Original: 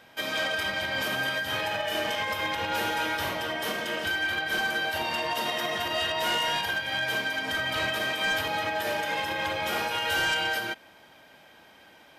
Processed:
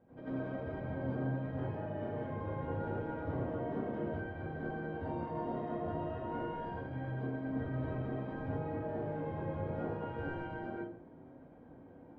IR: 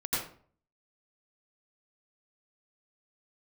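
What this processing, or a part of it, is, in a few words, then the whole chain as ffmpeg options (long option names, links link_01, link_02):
television next door: -filter_complex "[0:a]acompressor=threshold=-31dB:ratio=6,lowpass=390[link_01];[1:a]atrim=start_sample=2205[link_02];[link_01][link_02]afir=irnorm=-1:irlink=0"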